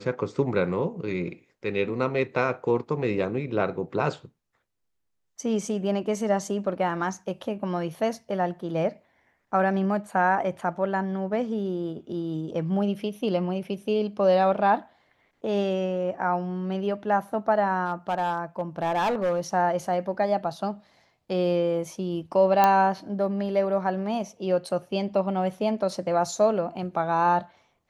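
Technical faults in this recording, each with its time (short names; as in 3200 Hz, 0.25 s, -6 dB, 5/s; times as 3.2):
17.85–19.4 clipped -20.5 dBFS
22.64 pop -7 dBFS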